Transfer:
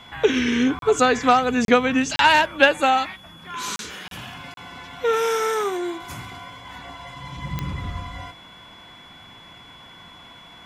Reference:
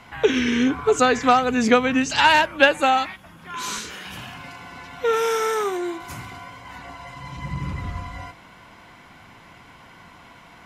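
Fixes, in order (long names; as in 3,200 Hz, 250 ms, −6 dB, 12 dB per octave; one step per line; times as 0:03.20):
click removal
notch filter 3,400 Hz, Q 30
repair the gap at 0:00.79/0:01.65/0:02.16/0:03.76/0:04.08/0:04.54, 32 ms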